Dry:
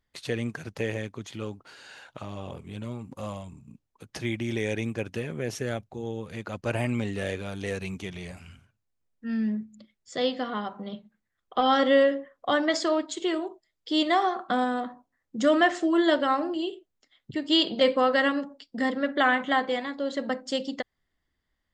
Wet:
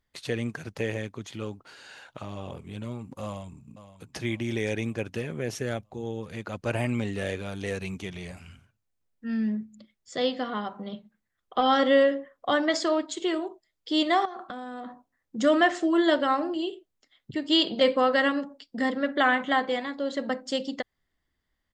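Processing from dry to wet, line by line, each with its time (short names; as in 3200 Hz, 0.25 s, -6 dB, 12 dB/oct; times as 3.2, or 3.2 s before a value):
3.24–4.18 echo throw 0.52 s, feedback 50%, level -13.5 dB
14.25–15.36 compressor 16:1, threshold -33 dBFS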